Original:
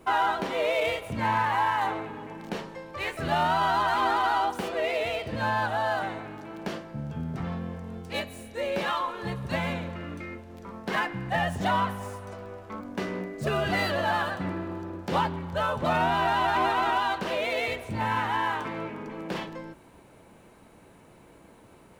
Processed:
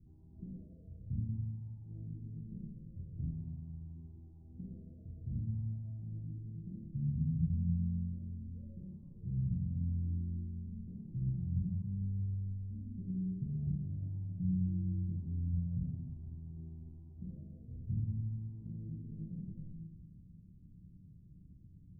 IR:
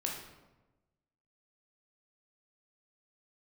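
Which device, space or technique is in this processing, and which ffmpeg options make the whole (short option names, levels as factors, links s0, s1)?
club heard from the street: -filter_complex "[0:a]alimiter=level_in=1.19:limit=0.0631:level=0:latency=1,volume=0.841,lowpass=f=160:w=0.5412,lowpass=f=160:w=1.3066[s0];[1:a]atrim=start_sample=2205[s1];[s0][s1]afir=irnorm=-1:irlink=0,volume=1.26"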